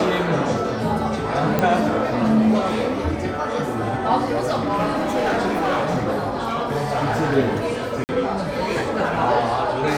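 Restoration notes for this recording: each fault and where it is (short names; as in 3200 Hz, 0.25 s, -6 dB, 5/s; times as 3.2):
1.59 pop -6 dBFS
4.31–7.36 clipped -16.5 dBFS
8.04–8.09 gap 49 ms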